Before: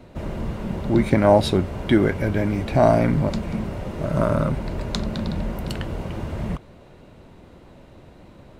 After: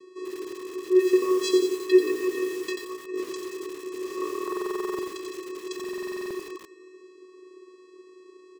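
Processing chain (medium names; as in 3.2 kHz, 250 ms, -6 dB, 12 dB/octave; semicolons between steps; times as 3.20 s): vocoder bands 8, square 369 Hz; tone controls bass -11 dB, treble +13 dB; delay 269 ms -24 dB; in parallel at -4.5 dB: saturation -23 dBFS, distortion -5 dB; 2.68–3.32 s: on the sum: compressor with a negative ratio -28 dBFS, ratio -0.5; on a send at -13.5 dB: reverberation RT60 2.9 s, pre-delay 23 ms; on the sum: buffer glitch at 4.43/5.75 s, samples 2048, times 11; bit-crushed delay 88 ms, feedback 55%, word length 6-bit, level -4.5 dB; trim -3 dB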